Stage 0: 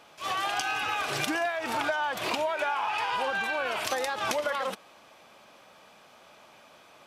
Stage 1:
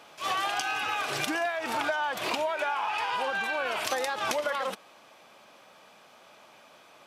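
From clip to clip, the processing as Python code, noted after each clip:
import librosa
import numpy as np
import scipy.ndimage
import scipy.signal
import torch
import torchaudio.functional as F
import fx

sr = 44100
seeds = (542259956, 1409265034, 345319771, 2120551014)

y = fx.highpass(x, sr, hz=130.0, slope=6)
y = fx.rider(y, sr, range_db=10, speed_s=0.5)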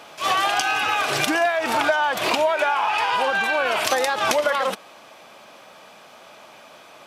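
y = fx.peak_eq(x, sr, hz=650.0, db=2.0, octaves=0.25)
y = F.gain(torch.from_numpy(y), 8.5).numpy()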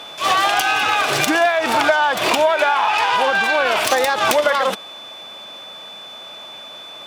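y = fx.self_delay(x, sr, depth_ms=0.074)
y = y + 10.0 ** (-39.0 / 20.0) * np.sin(2.0 * np.pi * 3500.0 * np.arange(len(y)) / sr)
y = F.gain(torch.from_numpy(y), 4.5).numpy()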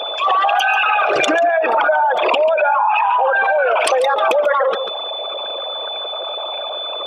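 y = fx.envelope_sharpen(x, sr, power=3.0)
y = y + 10.0 ** (-13.5 / 20.0) * np.pad(y, (int(141 * sr / 1000.0), 0))[:len(y)]
y = fx.env_flatten(y, sr, amount_pct=50)
y = F.gain(torch.from_numpy(y), -1.0).numpy()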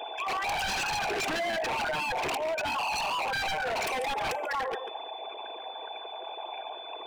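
y = fx.fixed_phaser(x, sr, hz=840.0, stages=8)
y = fx.comb_fb(y, sr, f0_hz=260.0, decay_s=0.71, harmonics='all', damping=0.0, mix_pct=60)
y = 10.0 ** (-25.5 / 20.0) * (np.abs((y / 10.0 ** (-25.5 / 20.0) + 3.0) % 4.0 - 2.0) - 1.0)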